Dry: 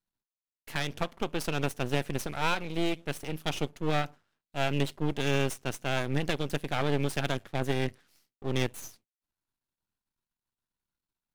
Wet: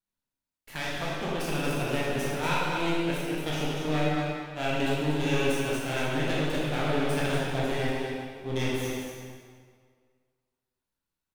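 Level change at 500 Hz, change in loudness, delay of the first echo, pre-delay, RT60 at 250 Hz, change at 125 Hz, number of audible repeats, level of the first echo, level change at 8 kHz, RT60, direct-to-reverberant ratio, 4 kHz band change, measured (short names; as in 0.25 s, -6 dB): +3.0 dB, +2.5 dB, 0.238 s, 16 ms, 1.8 s, +1.5 dB, 1, -7.0 dB, +2.0 dB, 1.9 s, -7.5 dB, +2.0 dB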